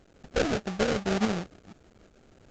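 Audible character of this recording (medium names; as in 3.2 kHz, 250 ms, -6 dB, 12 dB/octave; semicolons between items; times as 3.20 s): a quantiser's noise floor 10-bit, dither triangular; tremolo saw up 2.4 Hz, depth 45%; aliases and images of a low sample rate 1 kHz, jitter 20%; A-law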